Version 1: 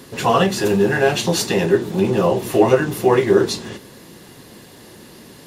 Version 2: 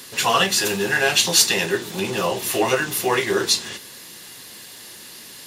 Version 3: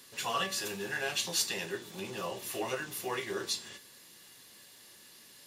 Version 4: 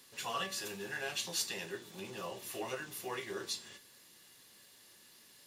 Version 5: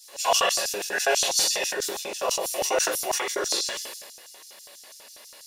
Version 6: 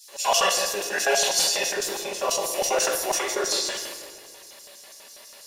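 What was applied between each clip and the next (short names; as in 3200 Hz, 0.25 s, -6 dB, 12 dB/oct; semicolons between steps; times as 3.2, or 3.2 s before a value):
tilt shelf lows -9.5 dB, about 1100 Hz; gain -1 dB
resonator 570 Hz, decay 0.47 s, mix 70%; gain -5.5 dB
crackle 320/s -53 dBFS; gain -5 dB
shoebox room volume 520 m³, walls furnished, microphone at 8.8 m; LFO high-pass square 6.1 Hz 570–5700 Hz; sustainer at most 37 dB/s; gain +2 dB
shoebox room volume 2700 m³, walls mixed, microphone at 1.2 m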